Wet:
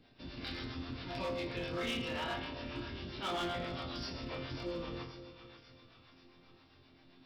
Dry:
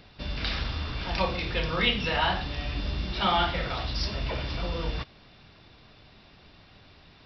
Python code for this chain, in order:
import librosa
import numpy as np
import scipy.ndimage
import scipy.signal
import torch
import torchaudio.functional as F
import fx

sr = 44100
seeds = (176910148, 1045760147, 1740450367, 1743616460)

y = fx.peak_eq(x, sr, hz=300.0, db=13.0, octaves=0.59)
y = fx.resonator_bank(y, sr, root=41, chord='sus4', decay_s=0.66)
y = fx.harmonic_tremolo(y, sr, hz=7.5, depth_pct=50, crossover_hz=510.0)
y = fx.echo_split(y, sr, split_hz=940.0, low_ms=260, high_ms=539, feedback_pct=52, wet_db=-12.0)
y = np.clip(y, -10.0 ** (-40.0 / 20.0), 10.0 ** (-40.0 / 20.0))
y = y * 10.0 ** (7.5 / 20.0)